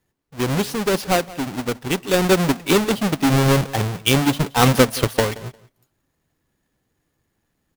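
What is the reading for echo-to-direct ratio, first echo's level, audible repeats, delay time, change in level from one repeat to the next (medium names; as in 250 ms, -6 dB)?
-20.0 dB, -20.0 dB, 2, 176 ms, -14.5 dB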